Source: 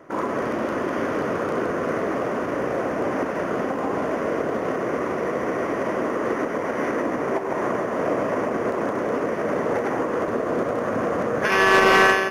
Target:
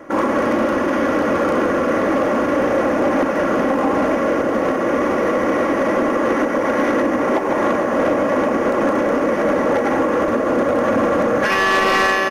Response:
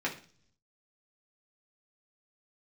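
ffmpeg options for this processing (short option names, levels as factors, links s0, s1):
-af "aecho=1:1:3.6:0.52,alimiter=limit=0.211:level=0:latency=1:release=296,aeval=exprs='0.501*sin(PI/2*2.82*val(0)/0.501)':c=same,volume=0.562"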